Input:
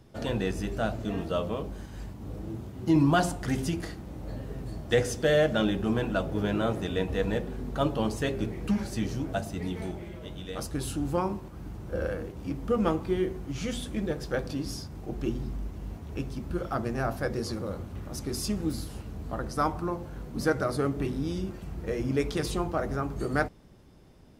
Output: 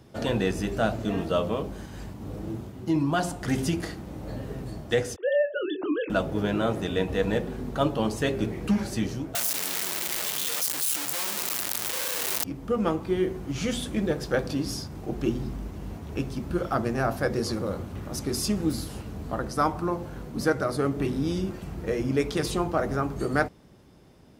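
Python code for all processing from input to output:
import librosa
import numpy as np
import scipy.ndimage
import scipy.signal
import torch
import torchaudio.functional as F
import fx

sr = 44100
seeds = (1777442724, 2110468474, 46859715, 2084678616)

y = fx.chain(x, sr, fx.sine_speech(),
    fx.doubler(ms=24.0, db=-10), at=(5.16, 6.1))
y = fx.chain(y, sr, fx.clip_1bit(),
    fx.tilt_eq(slope=4.5),
    fx.env_flatten(amount_pct=50), at=(9.35, 12.44))
y = fx.highpass(y, sr, hz=90.0, slope=6)
y = fx.rider(y, sr, range_db=5, speed_s=0.5)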